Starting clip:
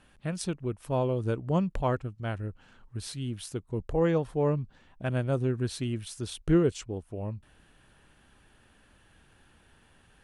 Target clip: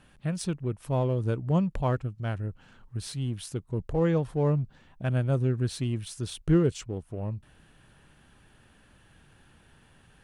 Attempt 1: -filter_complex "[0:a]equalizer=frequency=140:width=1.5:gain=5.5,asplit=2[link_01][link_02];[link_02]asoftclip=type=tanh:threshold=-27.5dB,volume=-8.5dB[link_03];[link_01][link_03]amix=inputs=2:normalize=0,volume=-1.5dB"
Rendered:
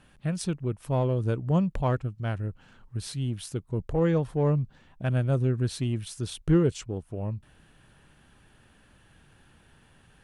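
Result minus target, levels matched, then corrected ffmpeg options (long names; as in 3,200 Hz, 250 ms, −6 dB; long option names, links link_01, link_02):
soft clipping: distortion −5 dB
-filter_complex "[0:a]equalizer=frequency=140:width=1.5:gain=5.5,asplit=2[link_01][link_02];[link_02]asoftclip=type=tanh:threshold=-38dB,volume=-8.5dB[link_03];[link_01][link_03]amix=inputs=2:normalize=0,volume=-1.5dB"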